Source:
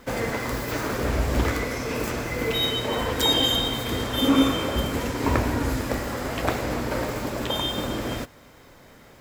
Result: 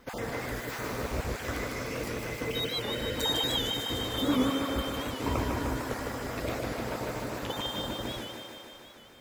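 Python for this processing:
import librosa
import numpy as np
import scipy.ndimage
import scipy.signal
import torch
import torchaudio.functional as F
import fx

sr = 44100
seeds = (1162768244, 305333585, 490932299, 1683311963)

y = fx.spec_dropout(x, sr, seeds[0], share_pct=22)
y = fx.echo_thinned(y, sr, ms=152, feedback_pct=74, hz=170.0, wet_db=-4)
y = fx.record_warp(y, sr, rpm=78.0, depth_cents=100.0)
y = y * librosa.db_to_amplitude(-8.0)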